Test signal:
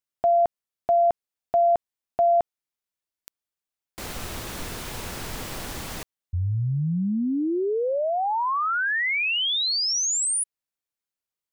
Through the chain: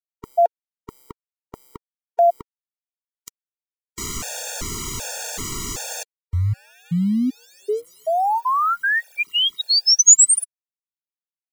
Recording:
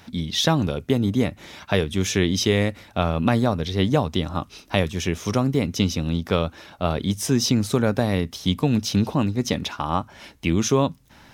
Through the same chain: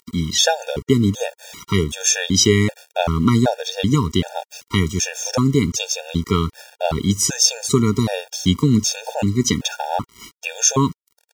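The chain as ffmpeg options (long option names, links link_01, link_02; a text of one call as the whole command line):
ffmpeg -i in.wav -af "equalizer=frequency=6800:width=1.8:gain=12.5,aeval=exprs='val(0)*gte(abs(val(0)),0.0119)':channel_layout=same,afftfilt=real='re*gt(sin(2*PI*1.3*pts/sr)*(1-2*mod(floor(b*sr/1024/470),2)),0)':imag='im*gt(sin(2*PI*1.3*pts/sr)*(1-2*mod(floor(b*sr/1024/470),2)),0)':win_size=1024:overlap=0.75,volume=5.5dB" out.wav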